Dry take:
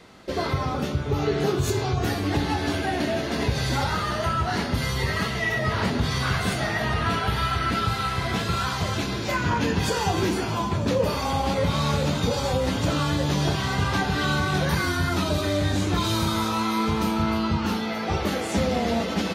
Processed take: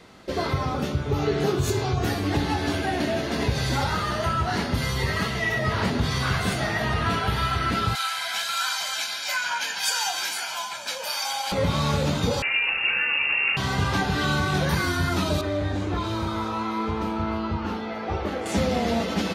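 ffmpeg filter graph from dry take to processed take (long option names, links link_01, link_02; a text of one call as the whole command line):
ffmpeg -i in.wav -filter_complex "[0:a]asettb=1/sr,asplit=3[link_01][link_02][link_03];[link_01]atrim=end=7.954[link_04];[link_02]atrim=start=7.95:end=11.52,asetpts=PTS-STARTPTS,afade=type=in:duration=0.004:curve=qsin,afade=type=out:start_time=3.566:duration=0.004:curve=qsin,highpass=1200,highshelf=frequency=3900:gain=7,aecho=1:1:1.3:0.64,atrim=end_sample=157437[link_05];[link_03]atrim=start=11.516[link_06];[link_04][link_05]acrossfade=duration=0.004:curve1=hsin:curve2=qsin[link_07];[link_07][link_06]acrossfade=duration=0.004:curve1=qsin:curve2=hsin,asettb=1/sr,asplit=3[link_08][link_09][link_10];[link_08]atrim=end=12.424[link_11];[link_09]atrim=start=12.42:end=13.57,asetpts=PTS-STARTPTS,afade=type=in:duration=0.004:curve=qsin,afade=type=out:start_time=1.146:duration=0.004:curve=qsin,highpass=64,acrusher=bits=4:mix=0:aa=0.5,lowpass=frequency=2500:width_type=q:width=0.5098,lowpass=frequency=2500:width_type=q:width=0.6013,lowpass=frequency=2500:width_type=q:width=0.9,lowpass=frequency=2500:width_type=q:width=2.563,afreqshift=-2900[link_12];[link_10]atrim=start=13.566[link_13];[link_11][link_12]acrossfade=duration=0.004:curve1=hsin:curve2=qsin[link_14];[link_14][link_13]acrossfade=duration=0.004:curve1=qsin:curve2=hsin,asettb=1/sr,asplit=3[link_15][link_16][link_17];[link_15]atrim=end=15.414[link_18];[link_16]atrim=start=15.41:end=18.46,asetpts=PTS-STARTPTS,afade=type=in:duration=0.004:curve=qsin,afade=type=out:start_time=3.046:duration=0.004:curve=qsin,lowpass=frequency=1400:poles=1,equalizer=frequency=160:width_type=o:width=1.1:gain=-8[link_19];[link_17]atrim=start=18.456[link_20];[link_18][link_19]acrossfade=duration=0.004:curve1=hsin:curve2=qsin[link_21];[link_21][link_20]acrossfade=duration=0.004:curve1=qsin:curve2=hsin" out.wav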